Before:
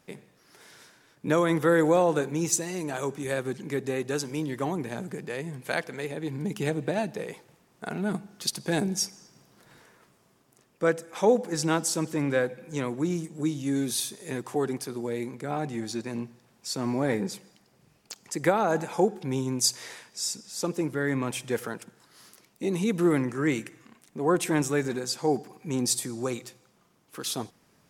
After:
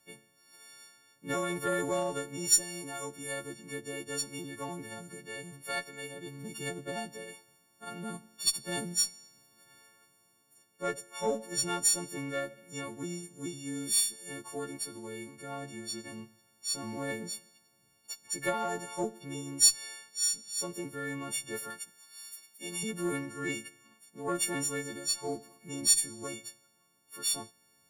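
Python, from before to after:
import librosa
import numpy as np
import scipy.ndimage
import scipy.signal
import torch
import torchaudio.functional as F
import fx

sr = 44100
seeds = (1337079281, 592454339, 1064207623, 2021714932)

y = fx.freq_snap(x, sr, grid_st=4)
y = fx.cheby_harmonics(y, sr, harmonics=(6, 7), levels_db=(-31, -29), full_scale_db=0.0)
y = fx.tilt_shelf(y, sr, db=-6.0, hz=1100.0, at=(21.7, 22.83))
y = F.gain(torch.from_numpy(y), -8.5).numpy()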